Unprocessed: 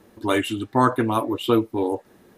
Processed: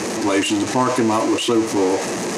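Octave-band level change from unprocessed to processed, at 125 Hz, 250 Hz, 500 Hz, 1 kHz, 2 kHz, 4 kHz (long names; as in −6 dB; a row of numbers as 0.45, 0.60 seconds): −1.0, +5.0, +4.5, +2.5, +5.0, +8.0 decibels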